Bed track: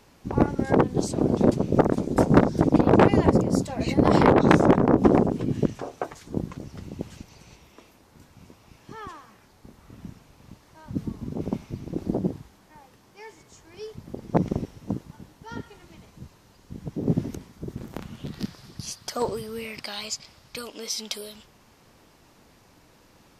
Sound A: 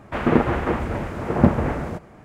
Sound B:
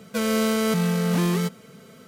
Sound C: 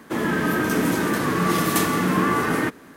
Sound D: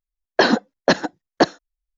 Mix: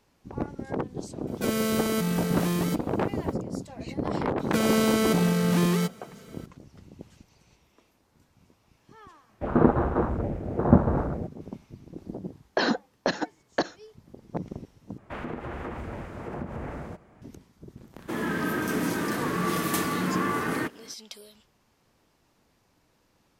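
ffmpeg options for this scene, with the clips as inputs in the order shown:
-filter_complex "[2:a]asplit=2[s0][s1];[1:a]asplit=2[s2][s3];[0:a]volume=0.282[s4];[s0]highshelf=f=11000:g=7.5[s5];[s2]afwtdn=0.0562[s6];[4:a]acompressor=threshold=0.178:ratio=6:attack=3.2:release=140:knee=1:detection=peak[s7];[s3]acompressor=threshold=0.0891:ratio=6:attack=3.2:release=140:knee=1:detection=peak[s8];[s4]asplit=2[s9][s10];[s9]atrim=end=14.984[s11];[s8]atrim=end=2.24,asetpts=PTS-STARTPTS,volume=0.335[s12];[s10]atrim=start=17.216[s13];[s5]atrim=end=2.07,asetpts=PTS-STARTPTS,volume=0.562,afade=t=in:d=0.004:c=hsin,afade=t=out:st=2.066:d=0.004:c=hsin,adelay=1270[s14];[s1]atrim=end=2.07,asetpts=PTS-STARTPTS,volume=0.891,afade=t=in:d=0.004:c=hsin,afade=t=out:st=2.066:d=0.004:c=hsin,adelay=4390[s15];[s6]atrim=end=2.24,asetpts=PTS-STARTPTS,volume=0.794,afade=t=in:d=0.004:c=hsin,afade=t=out:st=2.236:d=0.004:c=hsin,adelay=9290[s16];[s7]atrim=end=1.97,asetpts=PTS-STARTPTS,volume=0.631,afade=t=in:d=0.004:c=hsin,afade=t=out:st=1.966:d=0.004:c=hsin,adelay=12180[s17];[3:a]atrim=end=2.96,asetpts=PTS-STARTPTS,volume=0.473,afade=t=in:d=0.004:c=hsin,afade=t=out:st=2.956:d=0.004:c=hsin,adelay=17980[s18];[s11][s12]acrossfade=d=0.004:c1=hsin:c2=hsin[s19];[s19][s13]acrossfade=d=0.004:c1=hsin:c2=hsin[s20];[s20][s14][s15][s16][s17][s18]amix=inputs=6:normalize=0"

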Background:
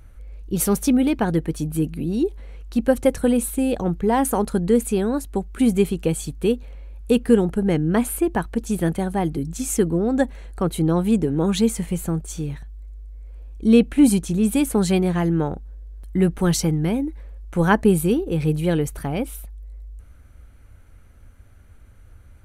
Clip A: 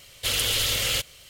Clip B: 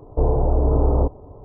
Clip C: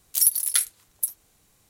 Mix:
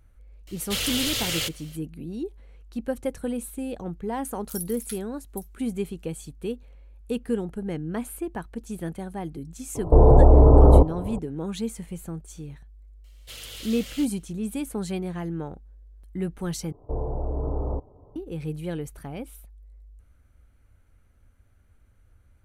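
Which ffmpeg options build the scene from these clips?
-filter_complex "[1:a]asplit=2[s0][s1];[2:a]asplit=2[s2][s3];[0:a]volume=0.282[s4];[s0]asoftclip=type=tanh:threshold=0.188[s5];[s2]alimiter=level_in=3.98:limit=0.891:release=50:level=0:latency=1[s6];[s4]asplit=2[s7][s8];[s7]atrim=end=16.724[s9];[s3]atrim=end=1.44,asetpts=PTS-STARTPTS,volume=0.299[s10];[s8]atrim=start=18.156[s11];[s5]atrim=end=1.29,asetpts=PTS-STARTPTS,volume=0.794,afade=t=in:d=0.004:c=hsin,afade=t=out:st=1.286:d=0.004:c=hsin,adelay=470[s12];[3:a]atrim=end=1.69,asetpts=PTS-STARTPTS,volume=0.15,afade=t=in:d=0.004:c=hsin,afade=t=out:st=1.686:d=0.004:c=hsin,adelay=4340[s13];[s6]atrim=end=1.44,asetpts=PTS-STARTPTS,volume=0.668,afade=t=in:d=0.004:c=hsin,afade=t=out:st=1.436:d=0.004:c=hsin,adelay=9750[s14];[s1]atrim=end=1.29,asetpts=PTS-STARTPTS,volume=0.158,afade=t=in:d=0.004:c=hsin,afade=t=out:st=1.286:d=0.004:c=hsin,adelay=13040[s15];[s9][s10]acrossfade=d=0.004:c1=hsin:c2=hsin[s16];[s16][s11]acrossfade=d=0.004:c1=hsin:c2=hsin[s17];[s17][s12][s13][s14][s15]amix=inputs=5:normalize=0"

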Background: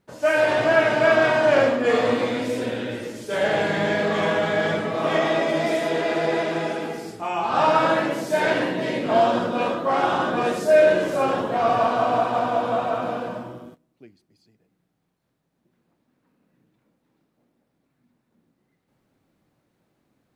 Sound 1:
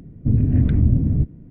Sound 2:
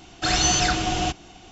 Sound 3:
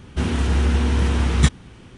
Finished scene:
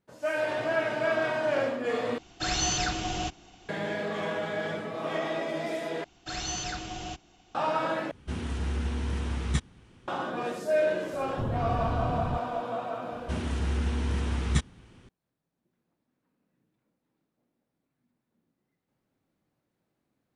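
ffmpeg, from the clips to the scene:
-filter_complex "[2:a]asplit=2[s0][s1];[3:a]asplit=2[s2][s3];[0:a]volume=0.316[s4];[1:a]asoftclip=type=tanh:threshold=0.133[s5];[s4]asplit=4[s6][s7][s8][s9];[s6]atrim=end=2.184[s10];[s0]atrim=end=1.51,asetpts=PTS-STARTPTS,volume=0.422[s11];[s7]atrim=start=3.686:end=6.044[s12];[s1]atrim=end=1.51,asetpts=PTS-STARTPTS,volume=0.211[s13];[s8]atrim=start=7.546:end=8.114[s14];[s2]atrim=end=1.97,asetpts=PTS-STARTPTS,volume=0.251[s15];[s9]atrim=start=10.076[s16];[s5]atrim=end=1.5,asetpts=PTS-STARTPTS,volume=0.335,afade=t=in:d=0.004:c=hsin,afade=t=out:st=1.496:d=0.004:c=hsin,adelay=11130[s17];[s3]atrim=end=1.97,asetpts=PTS-STARTPTS,volume=0.316,afade=t=in:d=0.004:c=hsin,afade=t=out:st=1.966:d=0.004:c=hsin,adelay=13120[s18];[s10][s11]acrossfade=d=0.004:c1=hsin:c2=hsin[s19];[s19][s12]acrossfade=d=0.004:c1=hsin:c2=hsin[s20];[s20][s13]acrossfade=d=0.004:c1=hsin:c2=hsin[s21];[s21][s14]acrossfade=d=0.004:c1=hsin:c2=hsin[s22];[s22][s15]acrossfade=d=0.004:c1=hsin:c2=hsin[s23];[s23][s16]acrossfade=d=0.004:c1=hsin:c2=hsin[s24];[s24][s17][s18]amix=inputs=3:normalize=0"

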